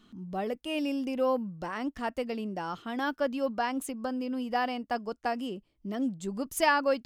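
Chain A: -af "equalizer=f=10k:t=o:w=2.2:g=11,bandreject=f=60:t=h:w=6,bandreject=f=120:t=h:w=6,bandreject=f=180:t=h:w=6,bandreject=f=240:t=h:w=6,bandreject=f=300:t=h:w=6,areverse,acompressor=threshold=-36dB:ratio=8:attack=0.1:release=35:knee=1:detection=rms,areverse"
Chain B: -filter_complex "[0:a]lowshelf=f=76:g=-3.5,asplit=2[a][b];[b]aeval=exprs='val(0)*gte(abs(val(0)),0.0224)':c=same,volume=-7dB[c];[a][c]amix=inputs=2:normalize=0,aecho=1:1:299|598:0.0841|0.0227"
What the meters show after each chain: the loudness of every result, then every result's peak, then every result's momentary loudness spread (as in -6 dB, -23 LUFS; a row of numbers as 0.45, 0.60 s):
-42.0, -29.0 LUFS; -32.5, -8.5 dBFS; 2, 9 LU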